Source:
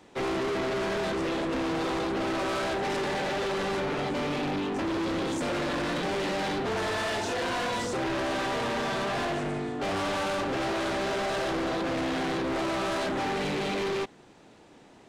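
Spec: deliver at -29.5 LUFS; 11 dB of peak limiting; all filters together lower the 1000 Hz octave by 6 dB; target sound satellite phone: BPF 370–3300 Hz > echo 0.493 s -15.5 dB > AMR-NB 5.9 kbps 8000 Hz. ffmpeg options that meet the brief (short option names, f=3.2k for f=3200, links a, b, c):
-af "equalizer=f=1k:t=o:g=-8,alimiter=level_in=12dB:limit=-24dB:level=0:latency=1,volume=-12dB,highpass=370,lowpass=3.3k,aecho=1:1:493:0.168,volume=16dB" -ar 8000 -c:a libopencore_amrnb -b:a 5900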